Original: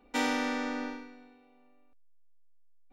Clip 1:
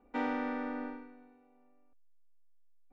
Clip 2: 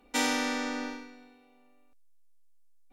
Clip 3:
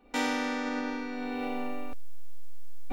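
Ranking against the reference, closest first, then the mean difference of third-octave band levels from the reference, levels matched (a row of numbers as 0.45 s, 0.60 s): 2, 1, 3; 2.0 dB, 3.5 dB, 8.5 dB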